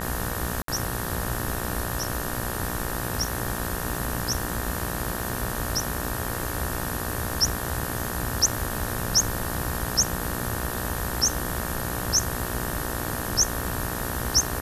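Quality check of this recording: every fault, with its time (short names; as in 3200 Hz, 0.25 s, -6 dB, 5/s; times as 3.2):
buzz 60 Hz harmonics 31 -33 dBFS
crackle 100/s -37 dBFS
0.62–0.68 gap 63 ms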